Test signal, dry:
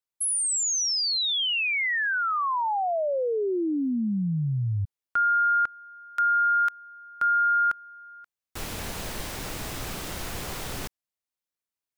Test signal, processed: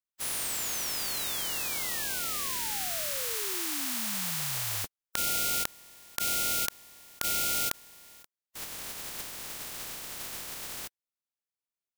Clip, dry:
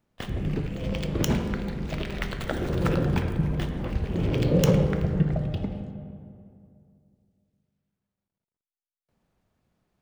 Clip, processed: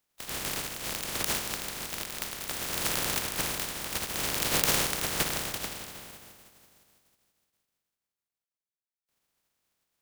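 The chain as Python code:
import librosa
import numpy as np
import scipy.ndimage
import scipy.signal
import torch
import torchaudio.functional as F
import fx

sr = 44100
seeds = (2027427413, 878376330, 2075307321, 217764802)

y = fx.spec_flatten(x, sr, power=0.16)
y = F.gain(torch.from_numpy(y), -6.0).numpy()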